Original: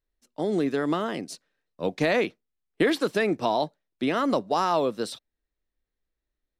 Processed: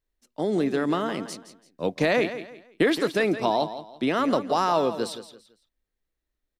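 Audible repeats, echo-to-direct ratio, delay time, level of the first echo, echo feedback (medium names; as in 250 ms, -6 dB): 3, -11.5 dB, 168 ms, -12.0 dB, 30%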